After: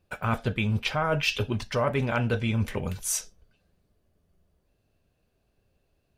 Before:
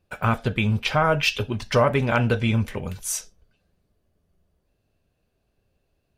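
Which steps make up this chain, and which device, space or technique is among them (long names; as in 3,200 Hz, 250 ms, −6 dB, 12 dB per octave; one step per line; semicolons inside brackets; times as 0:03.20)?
compression on the reversed sound (reversed playback; downward compressor 6 to 1, threshold −22 dBFS, peak gain reduction 8.5 dB; reversed playback)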